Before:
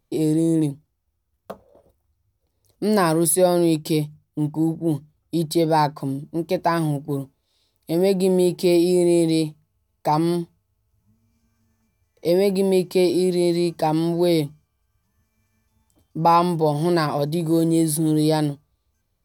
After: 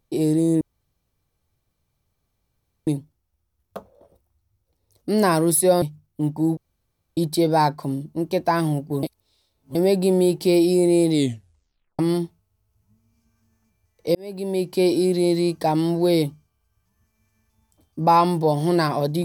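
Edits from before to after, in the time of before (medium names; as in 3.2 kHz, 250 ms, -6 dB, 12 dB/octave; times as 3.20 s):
0.61 s: insert room tone 2.26 s
3.56–4.00 s: delete
4.75–5.35 s: room tone
7.21–7.93 s: reverse
9.29 s: tape stop 0.88 s
12.33–13.07 s: fade in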